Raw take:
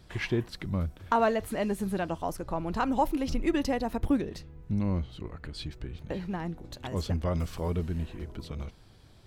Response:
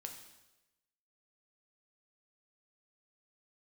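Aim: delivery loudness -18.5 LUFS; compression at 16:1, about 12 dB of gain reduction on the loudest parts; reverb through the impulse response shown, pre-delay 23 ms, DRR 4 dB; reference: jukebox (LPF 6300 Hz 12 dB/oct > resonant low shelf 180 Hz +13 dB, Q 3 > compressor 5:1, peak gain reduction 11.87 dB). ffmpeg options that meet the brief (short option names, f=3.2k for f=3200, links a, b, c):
-filter_complex "[0:a]acompressor=threshold=-32dB:ratio=16,asplit=2[a][b];[1:a]atrim=start_sample=2205,adelay=23[c];[b][c]afir=irnorm=-1:irlink=0,volume=-0.5dB[d];[a][d]amix=inputs=2:normalize=0,lowpass=6.3k,lowshelf=f=180:t=q:w=3:g=13,acompressor=threshold=-27dB:ratio=5,volume=14.5dB"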